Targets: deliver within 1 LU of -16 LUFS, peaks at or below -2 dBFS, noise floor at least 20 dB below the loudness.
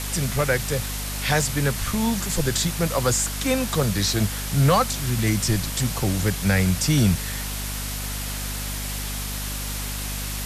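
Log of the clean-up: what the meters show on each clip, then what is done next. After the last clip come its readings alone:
hum 50 Hz; highest harmonic 250 Hz; hum level -29 dBFS; noise floor -30 dBFS; noise floor target -44 dBFS; loudness -23.5 LUFS; peak level -8.5 dBFS; loudness target -16.0 LUFS
-> de-hum 50 Hz, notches 5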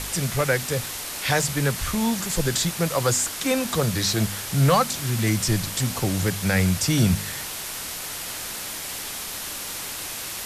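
hum not found; noise floor -33 dBFS; noise floor target -44 dBFS
-> noise reduction 11 dB, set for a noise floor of -33 dBFS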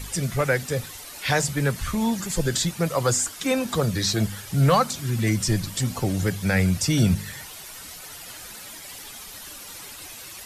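noise floor -41 dBFS; noise floor target -44 dBFS
-> noise reduction 6 dB, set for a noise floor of -41 dBFS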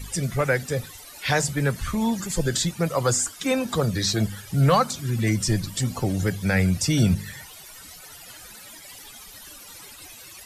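noise floor -44 dBFS; loudness -24.0 LUFS; peak level -8.5 dBFS; loudness target -16.0 LUFS
-> trim +8 dB; peak limiter -2 dBFS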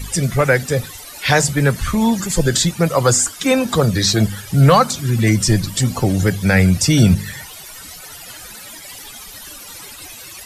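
loudness -16.0 LUFS; peak level -2.0 dBFS; noise floor -36 dBFS

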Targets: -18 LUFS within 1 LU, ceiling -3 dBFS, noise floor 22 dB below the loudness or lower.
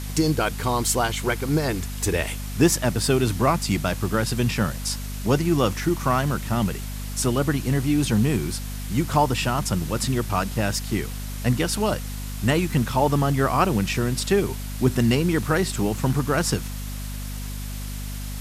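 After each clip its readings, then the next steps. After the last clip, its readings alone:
hum 50 Hz; highest harmonic 250 Hz; hum level -29 dBFS; noise floor -31 dBFS; noise floor target -46 dBFS; loudness -23.5 LUFS; peak level -5.5 dBFS; loudness target -18.0 LUFS
-> de-hum 50 Hz, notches 5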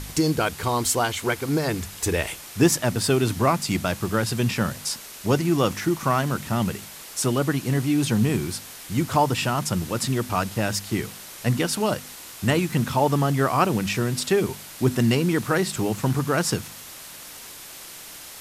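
hum not found; noise floor -41 dBFS; noise floor target -46 dBFS
-> noise reduction 6 dB, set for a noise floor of -41 dBFS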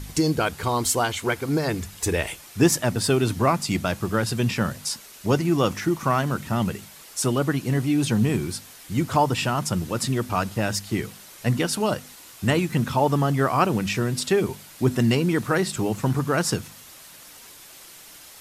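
noise floor -46 dBFS; loudness -24.0 LUFS; peak level -6.0 dBFS; loudness target -18.0 LUFS
-> trim +6 dB; peak limiter -3 dBFS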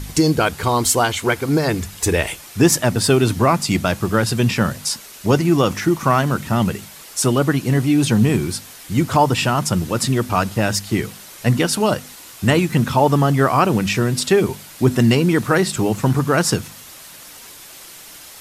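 loudness -18.0 LUFS; peak level -3.0 dBFS; noise floor -40 dBFS

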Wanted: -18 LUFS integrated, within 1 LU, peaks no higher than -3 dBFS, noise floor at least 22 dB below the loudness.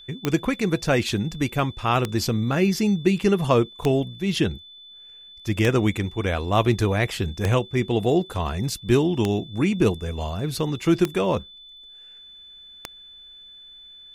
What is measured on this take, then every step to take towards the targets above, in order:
clicks found 8; steady tone 3.5 kHz; tone level -43 dBFS; loudness -23.0 LUFS; peak level -5.5 dBFS; loudness target -18.0 LUFS
-> de-click; band-stop 3.5 kHz, Q 30; trim +5 dB; peak limiter -3 dBFS

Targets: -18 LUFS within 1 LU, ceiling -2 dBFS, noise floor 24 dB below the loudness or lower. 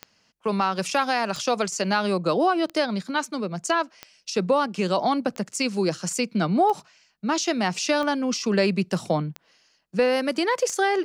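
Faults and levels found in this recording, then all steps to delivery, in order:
clicks found 9; loudness -24.5 LUFS; peak level -10.5 dBFS; loudness target -18.0 LUFS
-> de-click; trim +6.5 dB

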